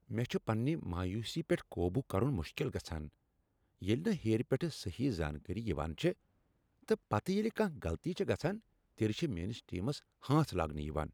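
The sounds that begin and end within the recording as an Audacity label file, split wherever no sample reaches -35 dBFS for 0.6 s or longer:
3.820000	6.120000	sound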